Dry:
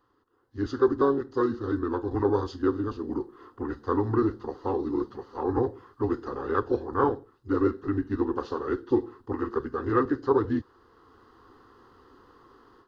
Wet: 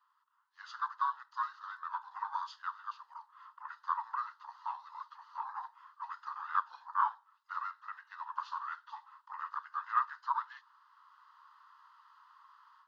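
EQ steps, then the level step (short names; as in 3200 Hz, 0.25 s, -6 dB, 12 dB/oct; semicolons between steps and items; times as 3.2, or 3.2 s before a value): Chebyshev high-pass 920 Hz, order 6; bell 1700 Hz -3 dB 0.77 oct; high shelf 3700 Hz -11 dB; +1.0 dB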